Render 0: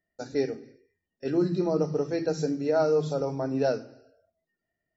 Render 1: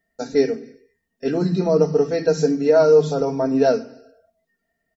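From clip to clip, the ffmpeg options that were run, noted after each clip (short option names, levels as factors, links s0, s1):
-af "aecho=1:1:4.4:0.63,volume=2.24"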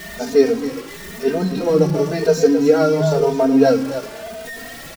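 -filter_complex "[0:a]aeval=exprs='val(0)+0.5*0.0335*sgn(val(0))':c=same,aecho=1:1:270:0.316,asplit=2[s0][s1];[s1]adelay=3,afreqshift=0.98[s2];[s0][s2]amix=inputs=2:normalize=1,volume=1.78"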